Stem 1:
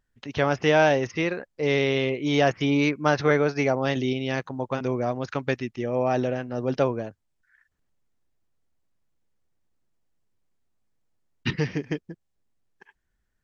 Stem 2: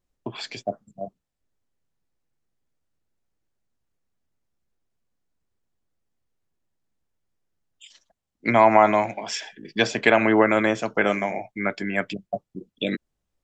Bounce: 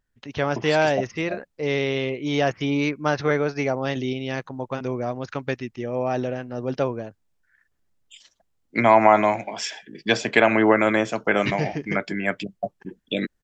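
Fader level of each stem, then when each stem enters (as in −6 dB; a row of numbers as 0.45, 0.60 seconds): −1.0, +0.5 decibels; 0.00, 0.30 seconds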